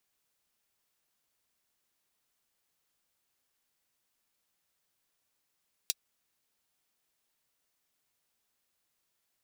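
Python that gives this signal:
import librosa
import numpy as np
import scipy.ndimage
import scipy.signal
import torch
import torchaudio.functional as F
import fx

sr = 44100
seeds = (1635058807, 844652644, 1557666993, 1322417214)

y = fx.drum_hat(sr, length_s=0.24, from_hz=3800.0, decay_s=0.04)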